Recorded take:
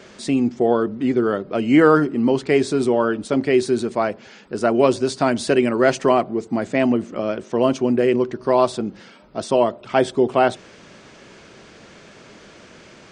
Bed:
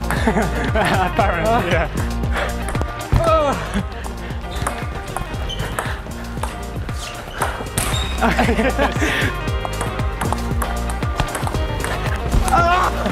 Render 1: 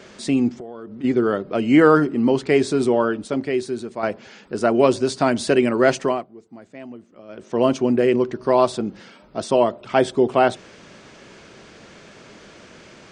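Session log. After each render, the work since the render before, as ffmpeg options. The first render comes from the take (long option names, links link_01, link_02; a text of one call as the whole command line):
ffmpeg -i in.wav -filter_complex "[0:a]asplit=3[link_01][link_02][link_03];[link_01]afade=type=out:start_time=0.56:duration=0.02[link_04];[link_02]acompressor=threshold=-33dB:ratio=6:attack=3.2:release=140:knee=1:detection=peak,afade=type=in:start_time=0.56:duration=0.02,afade=type=out:start_time=1.03:duration=0.02[link_05];[link_03]afade=type=in:start_time=1.03:duration=0.02[link_06];[link_04][link_05][link_06]amix=inputs=3:normalize=0,asplit=4[link_07][link_08][link_09][link_10];[link_07]atrim=end=4.03,asetpts=PTS-STARTPTS,afade=type=out:start_time=2.98:duration=1.05:curve=qua:silence=0.398107[link_11];[link_08]atrim=start=4.03:end=6.27,asetpts=PTS-STARTPTS,afade=type=in:duration=0.004:curve=hsin:silence=0.398107,afade=type=out:start_time=1.91:duration=0.33:silence=0.105925[link_12];[link_09]atrim=start=6.27:end=7.28,asetpts=PTS-STARTPTS,volume=-19.5dB[link_13];[link_10]atrim=start=7.28,asetpts=PTS-STARTPTS,afade=type=in:duration=0.33:silence=0.105925[link_14];[link_11][link_12][link_13][link_14]concat=n=4:v=0:a=1" out.wav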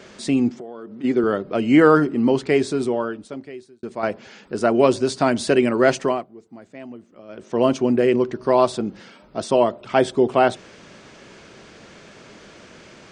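ffmpeg -i in.wav -filter_complex "[0:a]asettb=1/sr,asplit=3[link_01][link_02][link_03];[link_01]atrim=end=0.504[link_04];[link_02]atrim=start=0.5:end=1.24,asetpts=PTS-STARTPTS,afade=type=in:duration=0.004:curve=qsin,afade=type=out:start_time=0.736:duration=0.004:curve=qsin,highpass=160[link_05];[link_03]atrim=start=1.236[link_06];[link_04][link_05]acrossfade=duration=0.004:curve1=hsin:curve2=qsin[link_07];[link_07][link_06]acrossfade=duration=0.004:curve1=qsin:curve2=hsin,asplit=2[link_08][link_09];[link_08]atrim=end=3.83,asetpts=PTS-STARTPTS,afade=type=out:start_time=2.37:duration=1.46[link_10];[link_09]atrim=start=3.83,asetpts=PTS-STARTPTS,afade=type=in:duration=0.004:curve=hsin[link_11];[link_10][link_11]concat=n=2:v=0:a=1" out.wav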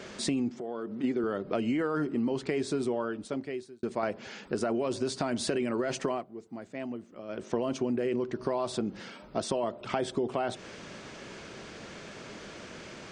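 ffmpeg -i in.wav -af "alimiter=limit=-12dB:level=0:latency=1:release=14,acompressor=threshold=-27dB:ratio=6" out.wav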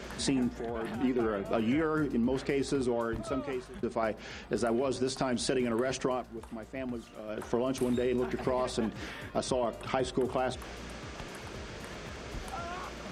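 ffmpeg -i in.wav -i bed.wav -filter_complex "[1:a]volume=-25.5dB[link_01];[0:a][link_01]amix=inputs=2:normalize=0" out.wav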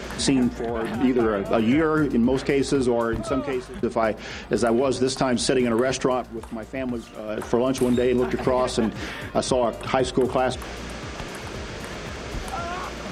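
ffmpeg -i in.wav -af "volume=9dB" out.wav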